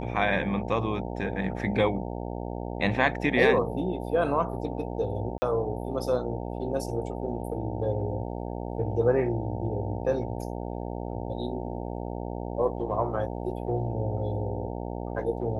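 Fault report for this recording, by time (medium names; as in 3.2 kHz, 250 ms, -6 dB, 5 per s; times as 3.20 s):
buzz 60 Hz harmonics 15 -34 dBFS
5.38–5.42 s: dropout 40 ms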